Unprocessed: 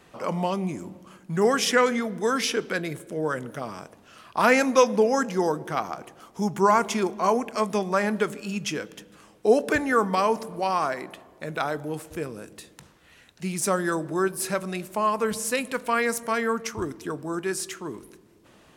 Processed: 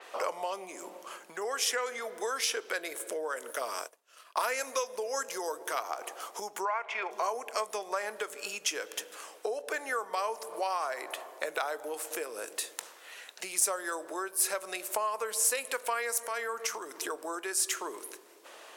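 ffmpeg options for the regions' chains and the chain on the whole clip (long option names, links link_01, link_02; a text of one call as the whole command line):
ffmpeg -i in.wav -filter_complex "[0:a]asettb=1/sr,asplit=3[link_01][link_02][link_03];[link_01]atrim=end=3.364[link_04];[link_02]atrim=start=3.36:end=5.83,asetpts=PTS-STARTPTS,afade=type=in:duration=0.004:curve=qsin,afade=type=out:start_time=2.466:duration=0.004:curve=qsin,highshelf=frequency=5500:gain=6.5,bandreject=frequency=790:width=8.6,agate=range=-33dB:threshold=-39dB:ratio=3:release=100:detection=peak[link_05];[link_03]atrim=start=5.826[link_06];[link_04][link_05]acrossfade=duration=0.004:curve1=hsin:curve2=qsin[link_07];[link_07][link_06]acrossfade=duration=0.004:curve1=qsin:curve2=hsin,asettb=1/sr,asplit=3[link_08][link_09][link_10];[link_08]atrim=end=6.654[link_11];[link_09]atrim=start=6.65:end=7.11,asetpts=PTS-STARTPTS,afade=type=in:duration=0.004:curve=qsin,afade=type=out:start_time=0.456:duration=0.004:curve=qsin,lowpass=frequency=2300:width_type=q:width=2.6,lowshelf=frequency=450:width_type=q:width=1.5:gain=-6[link_12];[link_10]atrim=start=7.106[link_13];[link_11][link_12]acrossfade=duration=0.004:curve1=hsin:curve2=qsin[link_14];[link_14][link_13]acrossfade=duration=0.004:curve1=qsin:curve2=hsin,asettb=1/sr,asplit=3[link_15][link_16][link_17];[link_15]atrim=end=16.204[link_18];[link_16]atrim=start=16.2:end=17.02,asetpts=PTS-STARTPTS,afade=type=in:duration=0.004:curve=qsin,afade=type=out:start_time=0.816:duration=0.004:curve=qsin,asubboost=boost=11:cutoff=150,acompressor=threshold=-37dB:ratio=3:attack=3.2:release=140:knee=1:detection=peak[link_19];[link_17]atrim=start=17.016[link_20];[link_18][link_19]acrossfade=duration=0.004:curve1=hsin:curve2=qsin[link_21];[link_21][link_20]acrossfade=duration=0.004:curve1=qsin:curve2=hsin,acompressor=threshold=-35dB:ratio=12,highpass=frequency=460:width=0.5412,highpass=frequency=460:width=1.3066,adynamicequalizer=threshold=0.00141:dfrequency=5800:dqfactor=0.7:tfrequency=5800:tqfactor=0.7:attack=5:release=100:ratio=0.375:range=3.5:mode=boostabove:tftype=highshelf,volume=7dB" out.wav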